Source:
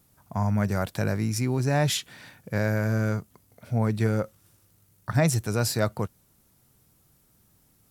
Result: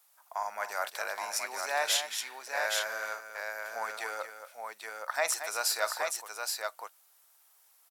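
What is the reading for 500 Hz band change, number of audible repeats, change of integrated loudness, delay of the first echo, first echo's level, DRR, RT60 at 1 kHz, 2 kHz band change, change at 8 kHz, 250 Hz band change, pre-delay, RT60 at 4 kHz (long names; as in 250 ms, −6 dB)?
−7.0 dB, 3, −6.5 dB, 45 ms, −18.0 dB, no reverb audible, no reverb audible, +1.5 dB, +1.5 dB, −33.5 dB, no reverb audible, no reverb audible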